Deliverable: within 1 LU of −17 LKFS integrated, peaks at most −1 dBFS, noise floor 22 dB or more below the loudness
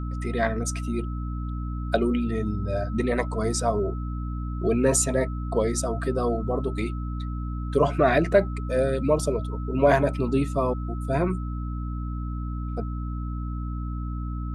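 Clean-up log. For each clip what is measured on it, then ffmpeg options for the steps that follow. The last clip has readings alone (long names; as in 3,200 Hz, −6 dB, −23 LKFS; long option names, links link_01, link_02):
mains hum 60 Hz; hum harmonics up to 300 Hz; level of the hum −28 dBFS; interfering tone 1,300 Hz; level of the tone −42 dBFS; integrated loudness −26.5 LKFS; sample peak −7.0 dBFS; target loudness −17.0 LKFS
→ -af "bandreject=frequency=60:width_type=h:width=6,bandreject=frequency=120:width_type=h:width=6,bandreject=frequency=180:width_type=h:width=6,bandreject=frequency=240:width_type=h:width=6,bandreject=frequency=300:width_type=h:width=6"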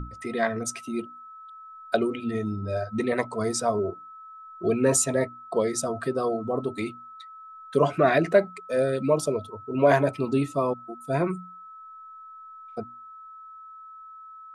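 mains hum none found; interfering tone 1,300 Hz; level of the tone −42 dBFS
→ -af "bandreject=frequency=1300:width=30"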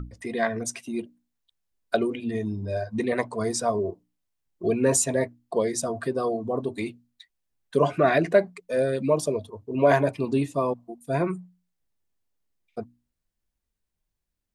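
interfering tone none found; integrated loudness −26.0 LKFS; sample peak −7.0 dBFS; target loudness −17.0 LKFS
→ -af "volume=9dB,alimiter=limit=-1dB:level=0:latency=1"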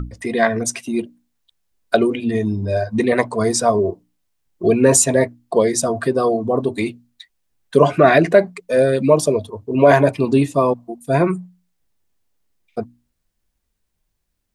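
integrated loudness −17.5 LKFS; sample peak −1.0 dBFS; background noise floor −73 dBFS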